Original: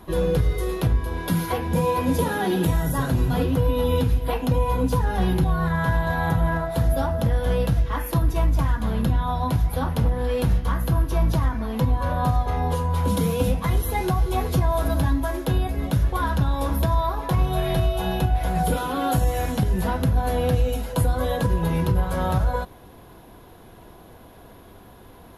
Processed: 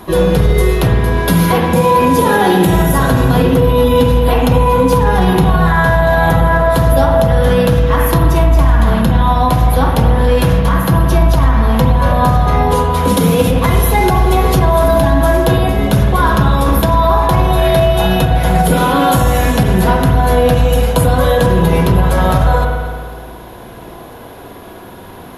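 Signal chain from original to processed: bass shelf 94 Hz -10 dB; spring tank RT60 1.8 s, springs 53 ms, chirp 70 ms, DRR 2 dB; loudness maximiser +14 dB; trim -1 dB

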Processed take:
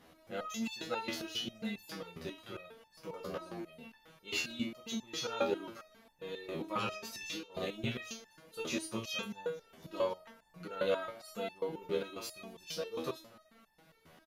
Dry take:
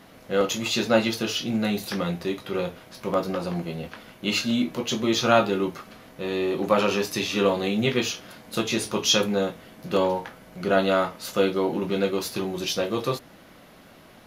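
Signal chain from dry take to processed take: frequency-shifting echo 238 ms, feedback 44%, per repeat +95 Hz, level -24 dB; 6.91–7.65 s: compressor with a negative ratio -26 dBFS, ratio -0.5; resonator arpeggio 7.4 Hz 81–890 Hz; trim -1 dB

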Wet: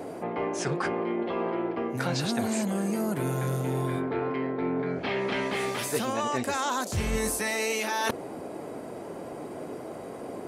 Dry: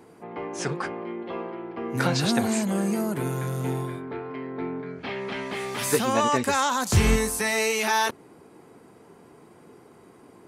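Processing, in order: reverse; compression 8:1, threshold -35 dBFS, peak gain reduction 20.5 dB; reverse; band noise 250–720 Hz -50 dBFS; trim +9 dB

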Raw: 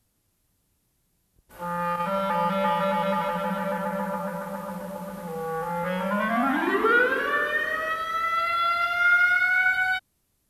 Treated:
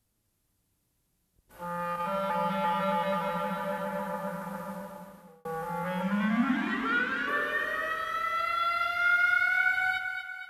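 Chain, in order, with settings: 6.02–7.28 s: FFT filter 120 Hz 0 dB, 230 Hz +8 dB, 390 Hz -15 dB, 2.2 kHz +2 dB, 7.1 kHz +1 dB, 11 kHz -11 dB; two-band feedback delay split 590 Hz, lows 93 ms, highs 238 ms, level -7 dB; 4.68–5.45 s: fade out; trim -5.5 dB

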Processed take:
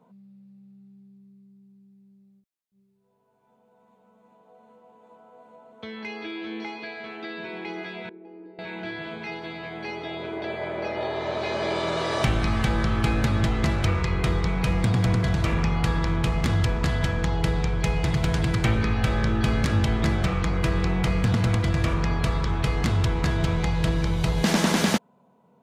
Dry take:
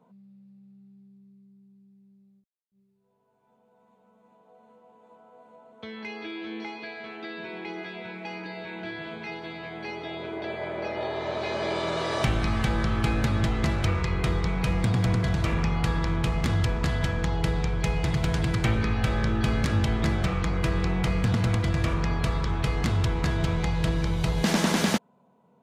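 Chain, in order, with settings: 8.09–8.59 s: band-pass filter 360 Hz, Q 4.4; trim +2 dB

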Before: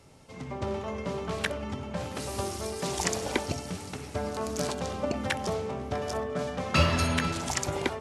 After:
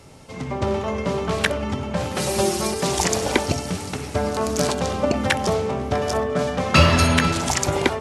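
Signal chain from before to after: 2.17–2.74 s: comb 5.5 ms, depth 100%; loudness maximiser +10.5 dB; trim -1 dB

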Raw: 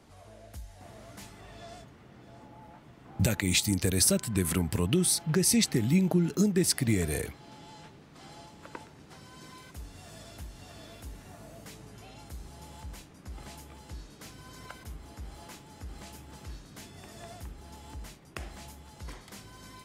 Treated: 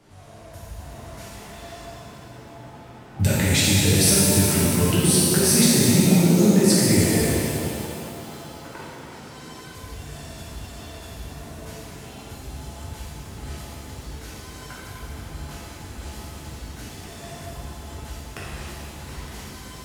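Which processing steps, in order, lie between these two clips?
pitch-shifted reverb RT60 2.8 s, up +7 st, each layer -8 dB, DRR -8 dB

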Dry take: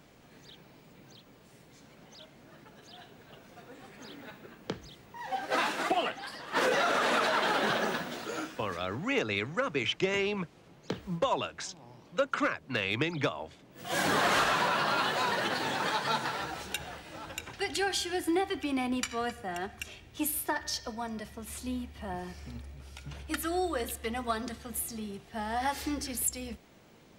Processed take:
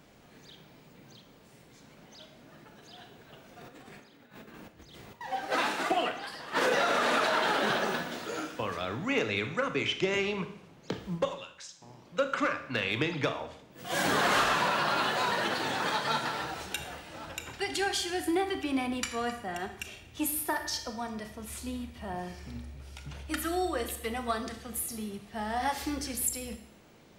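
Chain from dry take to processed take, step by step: 3.61–5.21 s: compressor with a negative ratio -53 dBFS, ratio -0.5; 11.25–11.82 s: amplifier tone stack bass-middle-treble 5-5-5; Schroeder reverb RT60 0.67 s, combs from 26 ms, DRR 8 dB

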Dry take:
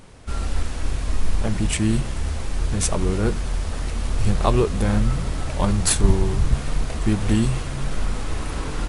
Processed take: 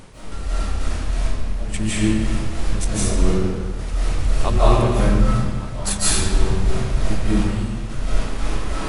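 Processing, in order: reverse; upward compressor, threshold -22 dBFS; reverse; trance gate "x.x.x.x....x." 95 bpm -12 dB; algorithmic reverb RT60 1.6 s, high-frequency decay 0.8×, pre-delay 120 ms, DRR -10 dB; trim -5 dB

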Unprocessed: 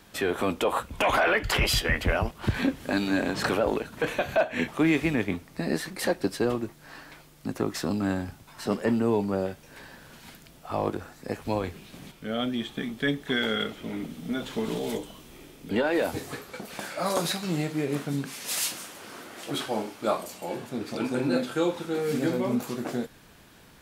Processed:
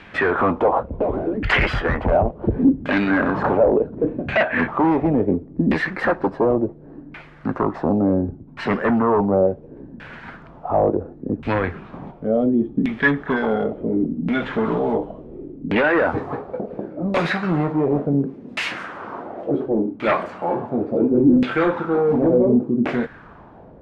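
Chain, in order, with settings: Chebyshev shaper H 5 -8 dB, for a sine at -12 dBFS; LFO low-pass saw down 0.7 Hz 240–2500 Hz

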